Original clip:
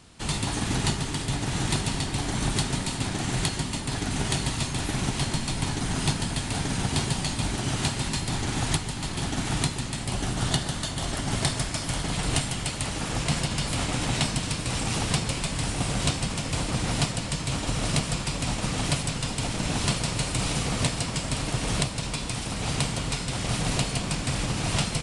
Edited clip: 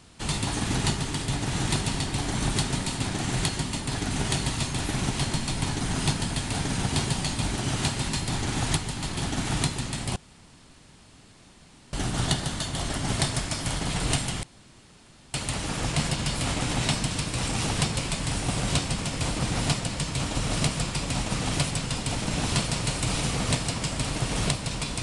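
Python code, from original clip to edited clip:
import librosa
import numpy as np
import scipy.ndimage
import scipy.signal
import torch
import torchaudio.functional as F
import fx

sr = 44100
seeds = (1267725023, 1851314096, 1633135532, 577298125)

y = fx.edit(x, sr, fx.insert_room_tone(at_s=10.16, length_s=1.77),
    fx.insert_room_tone(at_s=12.66, length_s=0.91), tone=tone)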